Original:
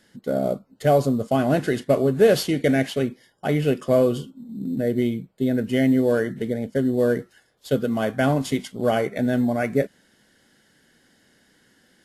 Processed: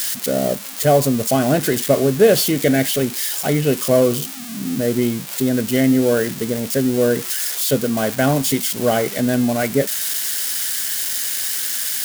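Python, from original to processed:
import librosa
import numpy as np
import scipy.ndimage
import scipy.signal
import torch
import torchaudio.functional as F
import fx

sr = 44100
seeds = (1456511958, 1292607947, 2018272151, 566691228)

y = x + 0.5 * 10.0 ** (-17.5 / 20.0) * np.diff(np.sign(x), prepend=np.sign(x[:1]))
y = y * librosa.db_to_amplitude(3.5)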